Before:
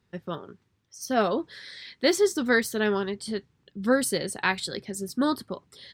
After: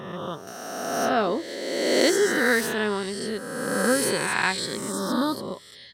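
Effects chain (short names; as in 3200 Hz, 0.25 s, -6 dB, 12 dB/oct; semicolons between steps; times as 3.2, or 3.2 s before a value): spectral swells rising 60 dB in 1.73 s; 0.47–1.55 mismatched tape noise reduction encoder only; gain -2 dB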